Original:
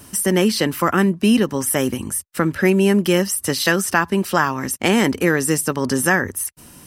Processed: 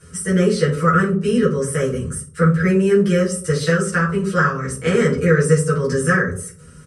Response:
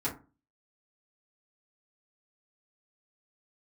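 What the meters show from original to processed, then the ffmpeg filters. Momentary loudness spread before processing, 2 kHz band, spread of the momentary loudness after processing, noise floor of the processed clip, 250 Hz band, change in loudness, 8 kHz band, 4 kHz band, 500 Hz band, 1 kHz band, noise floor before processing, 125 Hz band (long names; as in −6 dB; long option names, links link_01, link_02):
6 LU, −0.5 dB, 7 LU, −43 dBFS, −0.5 dB, +0.5 dB, −5.5 dB, −7.5 dB, +2.5 dB, −0.5 dB, −45 dBFS, +6.0 dB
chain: -filter_complex "[0:a]firequalizer=gain_entry='entry(130,0);entry(300,-16);entry(440,3);entry(820,-25);entry(1300,5);entry(2700,-8);entry(8800,-2);entry(13000,-27)':delay=0.05:min_phase=1[link_01];[1:a]atrim=start_sample=2205,asetrate=25137,aresample=44100[link_02];[link_01][link_02]afir=irnorm=-1:irlink=0,volume=-6.5dB"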